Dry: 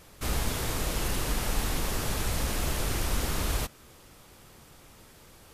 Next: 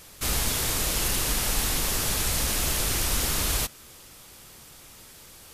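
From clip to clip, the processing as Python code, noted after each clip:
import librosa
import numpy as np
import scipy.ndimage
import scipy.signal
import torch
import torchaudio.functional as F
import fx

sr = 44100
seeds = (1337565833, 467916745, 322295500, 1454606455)

y = fx.high_shelf(x, sr, hz=2300.0, db=10.0)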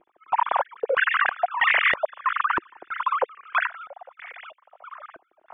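y = fx.sine_speech(x, sr)
y = fx.filter_held_lowpass(y, sr, hz=3.1, low_hz=350.0, high_hz=2000.0)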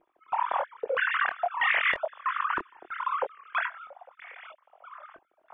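y = fx.chorus_voices(x, sr, voices=4, hz=0.83, base_ms=24, depth_ms=2.6, mix_pct=35)
y = F.gain(torch.from_numpy(y), -2.5).numpy()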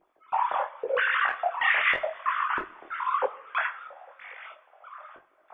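y = fx.rev_double_slope(x, sr, seeds[0], early_s=0.53, late_s=4.7, knee_db=-22, drr_db=11.5)
y = fx.detune_double(y, sr, cents=32)
y = F.gain(torch.from_numpy(y), 5.0).numpy()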